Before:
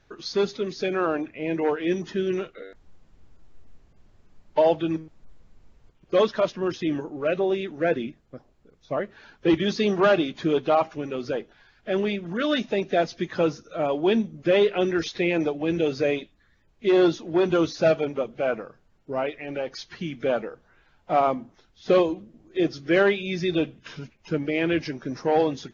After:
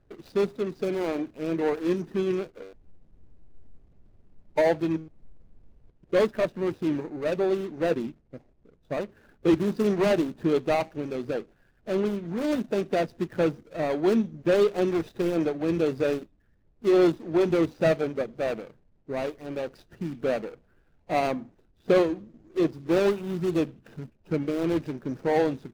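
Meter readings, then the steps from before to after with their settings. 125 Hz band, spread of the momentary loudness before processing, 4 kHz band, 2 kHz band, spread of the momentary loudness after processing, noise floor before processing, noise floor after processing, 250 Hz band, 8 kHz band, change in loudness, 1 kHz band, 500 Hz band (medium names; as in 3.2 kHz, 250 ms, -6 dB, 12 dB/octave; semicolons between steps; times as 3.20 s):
-0.5 dB, 12 LU, -7.5 dB, -5.5 dB, 11 LU, -62 dBFS, -64 dBFS, -1.0 dB, no reading, -2.0 dB, -4.5 dB, -2.0 dB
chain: median filter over 41 samples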